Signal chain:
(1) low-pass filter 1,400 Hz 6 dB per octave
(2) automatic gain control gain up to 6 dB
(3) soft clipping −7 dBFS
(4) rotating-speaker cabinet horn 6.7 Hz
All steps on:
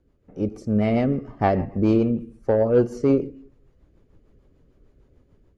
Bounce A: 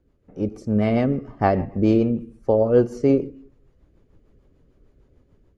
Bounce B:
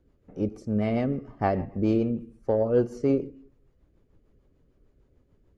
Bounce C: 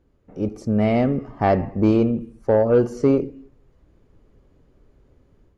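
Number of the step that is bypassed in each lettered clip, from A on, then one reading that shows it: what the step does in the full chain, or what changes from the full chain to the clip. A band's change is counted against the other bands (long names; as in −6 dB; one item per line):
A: 3, distortion level −21 dB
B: 2, change in integrated loudness −5.0 LU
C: 4, change in crest factor −3.5 dB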